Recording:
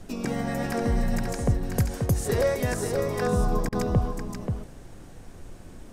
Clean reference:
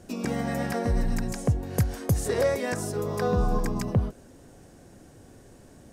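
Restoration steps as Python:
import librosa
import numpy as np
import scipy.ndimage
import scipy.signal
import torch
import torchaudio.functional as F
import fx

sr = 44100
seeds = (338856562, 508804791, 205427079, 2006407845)

y = fx.fix_interpolate(x, sr, at_s=(3.69,), length_ms=33.0)
y = fx.noise_reduce(y, sr, print_start_s=4.64, print_end_s=5.14, reduce_db=8.0)
y = fx.fix_echo_inverse(y, sr, delay_ms=533, level_db=-5.5)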